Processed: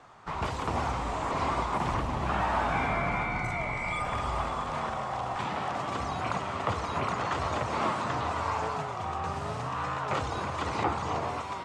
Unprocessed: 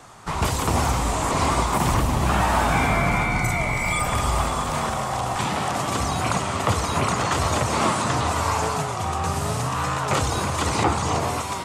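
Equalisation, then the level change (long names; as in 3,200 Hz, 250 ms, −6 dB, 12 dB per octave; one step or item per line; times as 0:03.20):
head-to-tape spacing loss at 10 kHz 23 dB
low-shelf EQ 410 Hz −8.5 dB
−3.0 dB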